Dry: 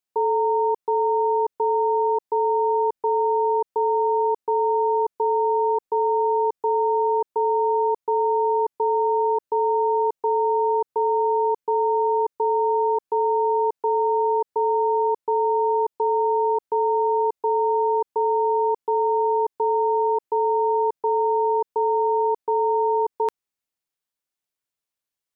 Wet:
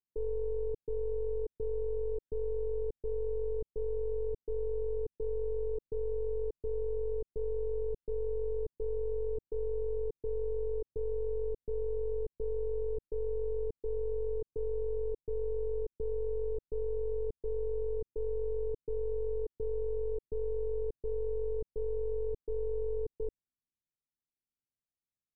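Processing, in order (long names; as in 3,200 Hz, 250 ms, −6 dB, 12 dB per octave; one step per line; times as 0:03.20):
wavefolder on the positive side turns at −20.5 dBFS
Gaussian smoothing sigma 24 samples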